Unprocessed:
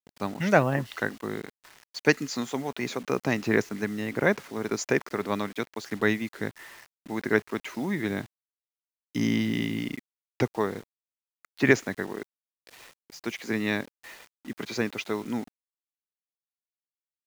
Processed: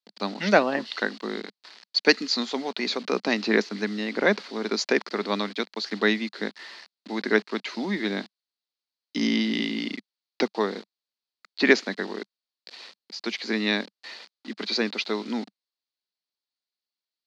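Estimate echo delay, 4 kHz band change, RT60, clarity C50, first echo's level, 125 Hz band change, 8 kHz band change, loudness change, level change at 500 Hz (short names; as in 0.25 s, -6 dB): none, +10.5 dB, none, none, none, -7.0 dB, -1.0 dB, +2.5 dB, +2.0 dB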